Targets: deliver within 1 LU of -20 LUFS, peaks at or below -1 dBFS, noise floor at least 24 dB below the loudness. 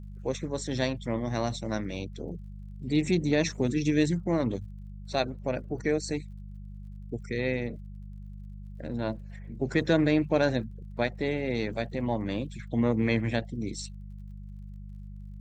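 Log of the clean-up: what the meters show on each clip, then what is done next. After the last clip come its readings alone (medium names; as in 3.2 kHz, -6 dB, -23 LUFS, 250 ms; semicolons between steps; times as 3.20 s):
tick rate 32 per s; hum 50 Hz; highest harmonic 200 Hz; hum level -39 dBFS; loudness -29.5 LUFS; peak level -11.0 dBFS; loudness target -20.0 LUFS
-> de-click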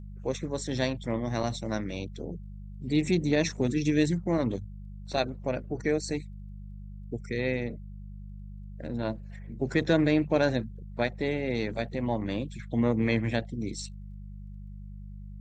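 tick rate 0.065 per s; hum 50 Hz; highest harmonic 200 Hz; hum level -39 dBFS
-> de-hum 50 Hz, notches 4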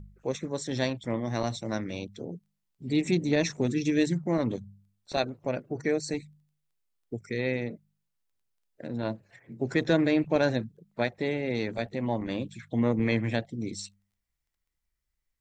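hum not found; loudness -29.5 LUFS; peak level -11.0 dBFS; loudness target -20.0 LUFS
-> trim +9.5 dB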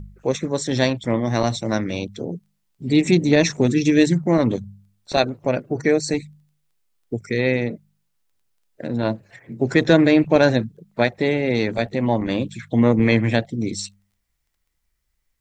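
loudness -20.0 LUFS; peak level -1.5 dBFS; noise floor -72 dBFS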